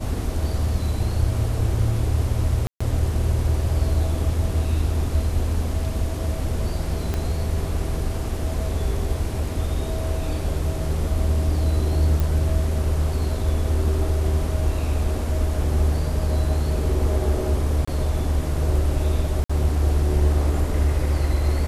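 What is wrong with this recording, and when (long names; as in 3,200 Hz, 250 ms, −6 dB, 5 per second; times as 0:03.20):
0:02.67–0:02.81: drop-out 135 ms
0:07.14: click −12 dBFS
0:12.20: click
0:17.85–0:17.88: drop-out 25 ms
0:19.44–0:19.50: drop-out 55 ms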